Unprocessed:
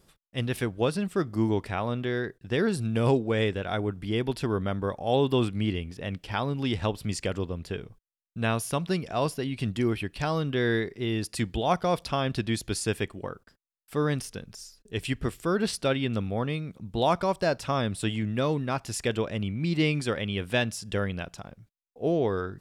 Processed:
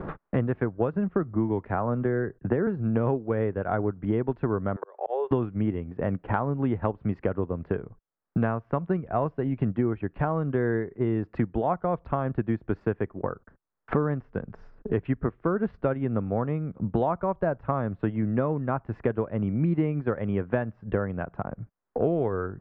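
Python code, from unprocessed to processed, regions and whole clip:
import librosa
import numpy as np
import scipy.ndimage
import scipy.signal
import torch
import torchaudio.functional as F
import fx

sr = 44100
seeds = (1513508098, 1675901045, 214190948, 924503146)

y = fx.chain(x, sr, fx.moving_average(points=6),
    fx.band_squash(depth_pct=40), at=(0.93, 2.67))
y = fx.chain(y, sr, fx.ellip_highpass(hz=390.0, order=4, stop_db=40),
    fx.auto_swell(attack_ms=652.0),
    fx.band_squash(depth_pct=100), at=(4.76, 5.31))
y = fx.transient(y, sr, attack_db=2, sustain_db=-6)
y = scipy.signal.sosfilt(scipy.signal.butter(4, 1500.0, 'lowpass', fs=sr, output='sos'), y)
y = fx.band_squash(y, sr, depth_pct=100)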